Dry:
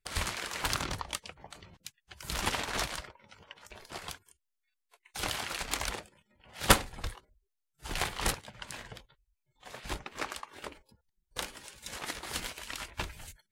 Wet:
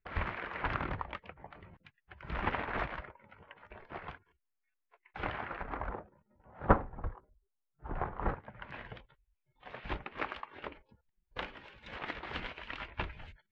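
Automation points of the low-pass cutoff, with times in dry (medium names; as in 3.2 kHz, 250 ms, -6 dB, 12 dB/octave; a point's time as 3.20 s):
low-pass 24 dB/octave
5.23 s 2.2 kHz
5.97 s 1.3 kHz
8.19 s 1.3 kHz
8.88 s 2.9 kHz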